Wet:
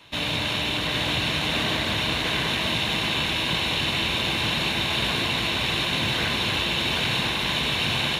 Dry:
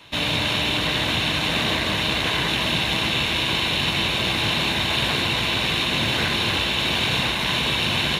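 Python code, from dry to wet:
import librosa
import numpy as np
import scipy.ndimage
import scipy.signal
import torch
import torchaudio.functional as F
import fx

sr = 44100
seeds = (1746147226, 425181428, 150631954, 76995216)

y = x + 10.0 ** (-5.5 / 20.0) * np.pad(x, (int(782 * sr / 1000.0), 0))[:len(x)]
y = F.gain(torch.from_numpy(y), -3.5).numpy()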